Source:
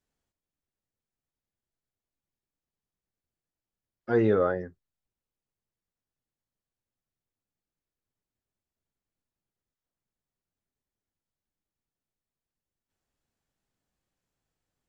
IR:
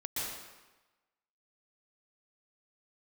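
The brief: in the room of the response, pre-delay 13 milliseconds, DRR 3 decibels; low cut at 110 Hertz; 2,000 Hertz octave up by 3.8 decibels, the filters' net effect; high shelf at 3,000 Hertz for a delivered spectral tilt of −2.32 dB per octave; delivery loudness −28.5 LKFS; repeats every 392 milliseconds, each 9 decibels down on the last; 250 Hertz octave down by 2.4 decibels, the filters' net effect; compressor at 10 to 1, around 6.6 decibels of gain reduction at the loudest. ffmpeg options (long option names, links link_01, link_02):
-filter_complex "[0:a]highpass=110,equalizer=frequency=250:width_type=o:gain=-3.5,equalizer=frequency=2000:width_type=o:gain=3,highshelf=frequency=3000:gain=7.5,acompressor=threshold=-26dB:ratio=10,aecho=1:1:392|784|1176|1568:0.355|0.124|0.0435|0.0152,asplit=2[link_01][link_02];[1:a]atrim=start_sample=2205,adelay=13[link_03];[link_02][link_03]afir=irnorm=-1:irlink=0,volume=-6.5dB[link_04];[link_01][link_04]amix=inputs=2:normalize=0,volume=3dB"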